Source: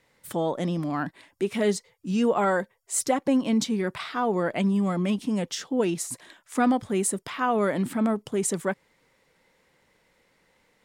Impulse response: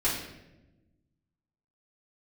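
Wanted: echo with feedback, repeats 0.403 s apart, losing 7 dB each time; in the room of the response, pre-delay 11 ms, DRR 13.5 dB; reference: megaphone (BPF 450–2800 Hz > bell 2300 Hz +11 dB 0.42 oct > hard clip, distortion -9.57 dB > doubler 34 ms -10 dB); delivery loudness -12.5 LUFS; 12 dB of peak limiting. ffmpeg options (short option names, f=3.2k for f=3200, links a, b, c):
-filter_complex "[0:a]alimiter=limit=-23dB:level=0:latency=1,aecho=1:1:403|806|1209|1612|2015:0.447|0.201|0.0905|0.0407|0.0183,asplit=2[a][b];[1:a]atrim=start_sample=2205,adelay=11[c];[b][c]afir=irnorm=-1:irlink=0,volume=-23.5dB[d];[a][d]amix=inputs=2:normalize=0,highpass=450,lowpass=2.8k,equalizer=f=2.3k:t=o:w=0.42:g=11,asoftclip=type=hard:threshold=-33dB,asplit=2[e][f];[f]adelay=34,volume=-10dB[g];[e][g]amix=inputs=2:normalize=0,volume=24.5dB"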